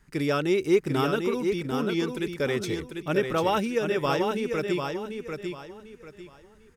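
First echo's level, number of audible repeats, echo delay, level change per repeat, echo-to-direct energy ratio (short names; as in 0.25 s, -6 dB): -5.5 dB, 3, 0.745 s, -11.0 dB, -5.0 dB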